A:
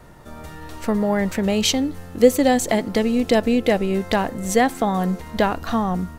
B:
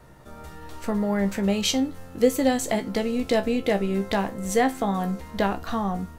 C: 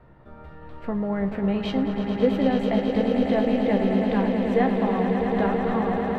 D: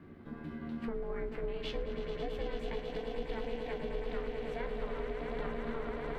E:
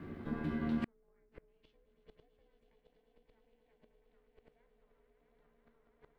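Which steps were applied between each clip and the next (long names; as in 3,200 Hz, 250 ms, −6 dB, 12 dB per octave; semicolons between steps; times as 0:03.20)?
tuned comb filter 66 Hz, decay 0.19 s, harmonics all, mix 80%
high-frequency loss of the air 440 metres; echo that builds up and dies away 109 ms, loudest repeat 8, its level −9 dB; level −1 dB
parametric band 570 Hz −12.5 dB 1.8 octaves; downward compressor 4 to 1, threshold −37 dBFS, peak gain reduction 13.5 dB; ring modulation 230 Hz; level +4 dB
gate with flip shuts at −29 dBFS, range −40 dB; level +6 dB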